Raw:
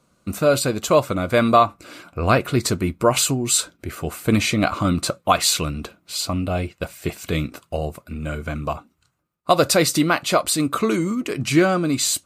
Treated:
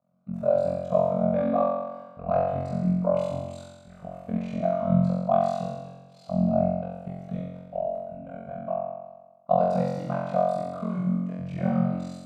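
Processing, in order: double band-pass 350 Hz, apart 1.8 oct; AM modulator 41 Hz, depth 95%; on a send: flutter echo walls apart 3.8 m, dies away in 1.2 s

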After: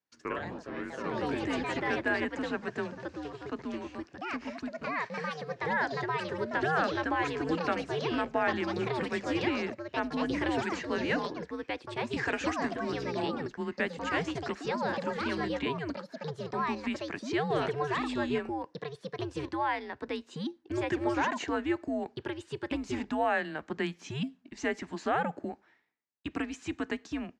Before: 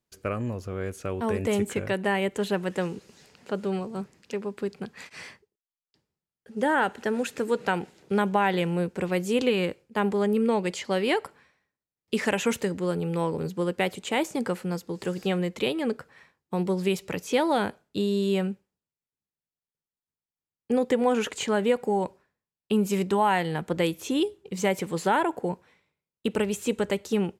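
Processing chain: echoes that change speed 92 ms, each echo +3 st, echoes 3; frequency shift -150 Hz; speaker cabinet 170–6200 Hz, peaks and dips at 1000 Hz +4 dB, 1700 Hz +7 dB, 3400 Hz -3 dB; gain -6.5 dB

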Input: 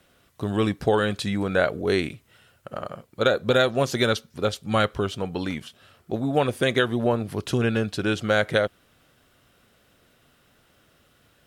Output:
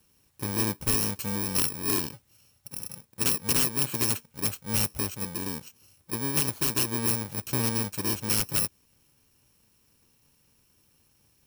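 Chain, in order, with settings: FFT order left unsorted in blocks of 64 samples; wrapped overs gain 12 dB; gain -4.5 dB

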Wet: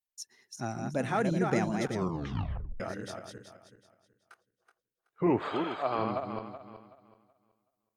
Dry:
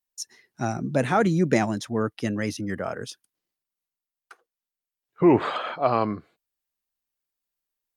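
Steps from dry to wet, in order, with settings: regenerating reverse delay 0.188 s, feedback 51%, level -4 dB; 1.91 tape stop 0.89 s; 5.49–5.99 HPF 270 Hz 6 dB/oct; gain -8.5 dB

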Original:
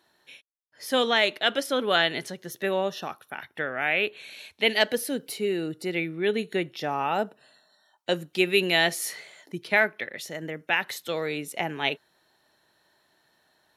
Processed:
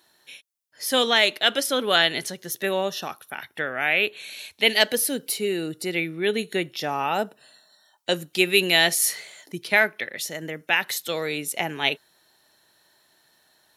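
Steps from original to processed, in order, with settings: high shelf 3900 Hz +10.5 dB; gain +1 dB

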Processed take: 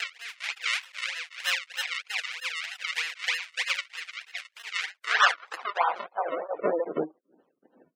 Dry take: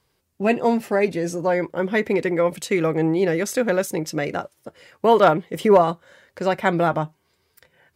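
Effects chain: minimum comb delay 4 ms; reverse echo 0.477 s -5.5 dB; decimation with a swept rate 37×, swing 100% 3.2 Hz; high-pass sweep 2200 Hz -> 280 Hz, 4.74–7.36; spectral gate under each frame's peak -20 dB strong; beating tremolo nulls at 2.7 Hz; gain -1 dB

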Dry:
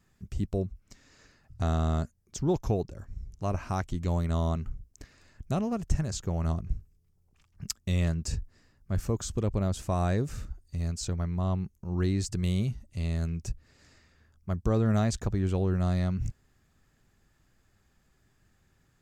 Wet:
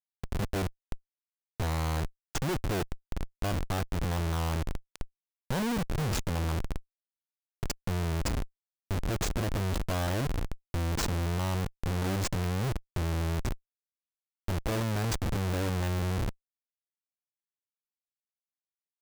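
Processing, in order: Schmitt trigger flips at -34.5 dBFS; gain +2 dB

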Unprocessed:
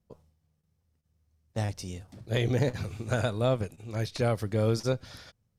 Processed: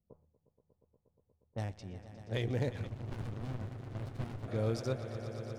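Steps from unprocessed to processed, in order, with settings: Wiener smoothing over 9 samples; low-pass opened by the level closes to 810 Hz, open at -26 dBFS; on a send: swelling echo 0.119 s, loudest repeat 5, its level -15 dB; 2.87–4.48 on the sum: running maximum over 65 samples; gain -7.5 dB

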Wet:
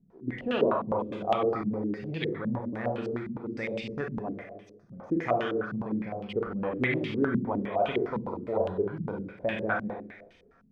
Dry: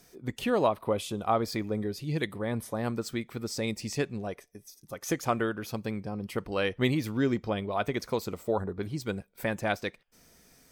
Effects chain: Schroeder reverb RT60 0.91 s, combs from 33 ms, DRR -0.5 dB; stepped low-pass 9.8 Hz 200–3000 Hz; gain -6 dB

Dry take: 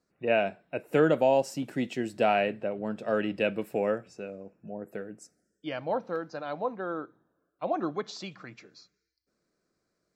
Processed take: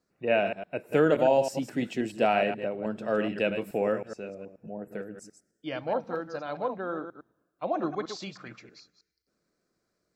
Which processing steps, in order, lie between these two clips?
reverse delay 0.106 s, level -8 dB

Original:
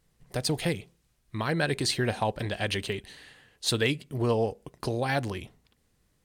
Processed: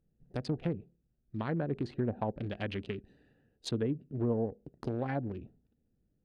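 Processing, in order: Wiener smoothing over 41 samples; treble ducked by the level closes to 650 Hz, closed at -22.5 dBFS; bell 240 Hz +5.5 dB 0.99 oct; gain -6 dB

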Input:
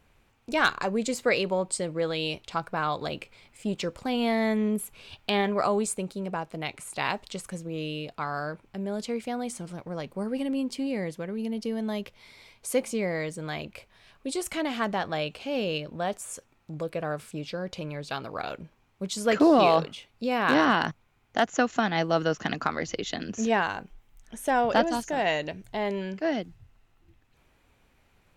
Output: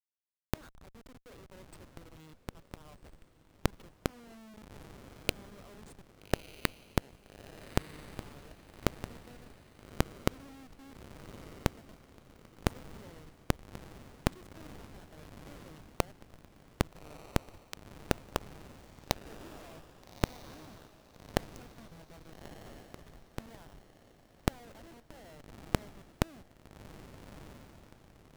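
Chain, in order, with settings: HPF 220 Hz 12 dB/oct; notches 50/100/150/200/250/300/350/400/450/500 Hz; dynamic EQ 280 Hz, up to +4 dB, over -45 dBFS, Q 3.5; AGC gain up to 8.5 dB; in parallel at +1 dB: limiter -13.5 dBFS, peak gain reduction 11 dB; on the sum: Schmitt trigger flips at -13 dBFS; flipped gate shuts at -27 dBFS, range -39 dB; diffused feedback echo 1.253 s, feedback 45%, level -13.5 dB; gain +4.5 dB

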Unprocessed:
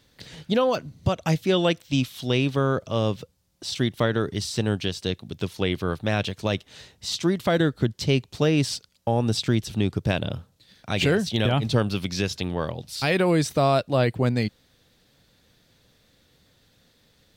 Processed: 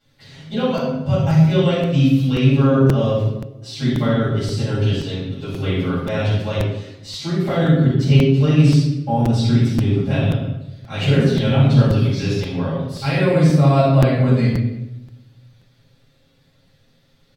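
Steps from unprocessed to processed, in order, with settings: high shelf 6400 Hz -5 dB; comb 7.4 ms, depth 64%; shoebox room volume 410 m³, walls mixed, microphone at 7.3 m; dynamic EQ 180 Hz, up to +5 dB, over -14 dBFS, Q 0.75; crackling interface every 0.53 s, samples 256, repeat, from 0.77; gain -14.5 dB

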